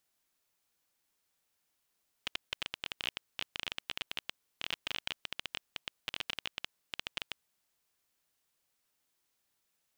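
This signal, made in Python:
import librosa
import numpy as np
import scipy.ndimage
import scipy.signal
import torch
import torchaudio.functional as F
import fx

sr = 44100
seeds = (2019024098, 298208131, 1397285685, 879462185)

y = fx.geiger_clicks(sr, seeds[0], length_s=5.08, per_s=17.0, level_db=-17.5)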